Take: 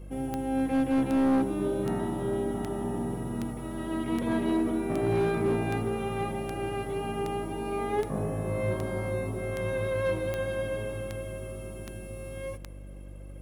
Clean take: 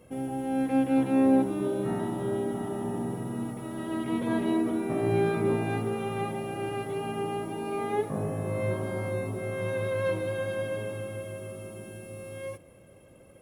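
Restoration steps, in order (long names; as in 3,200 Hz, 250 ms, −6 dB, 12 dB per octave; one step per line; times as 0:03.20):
clipped peaks rebuilt −20.5 dBFS
click removal
hum removal 48.8 Hz, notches 7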